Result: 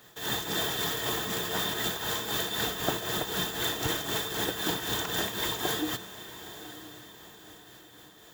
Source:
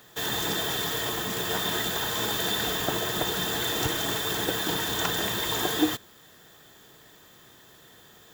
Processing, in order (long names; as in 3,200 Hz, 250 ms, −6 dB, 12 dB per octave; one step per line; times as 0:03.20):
shaped tremolo triangle 3.9 Hz, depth 70%
feedback delay with all-pass diffusion 932 ms, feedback 43%, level −13.5 dB
0:00.46–0:01.74: level that may fall only so fast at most 27 dB per second